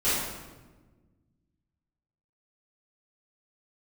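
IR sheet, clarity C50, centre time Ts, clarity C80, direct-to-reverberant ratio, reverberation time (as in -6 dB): -2.0 dB, 88 ms, 1.5 dB, -15.0 dB, 1.3 s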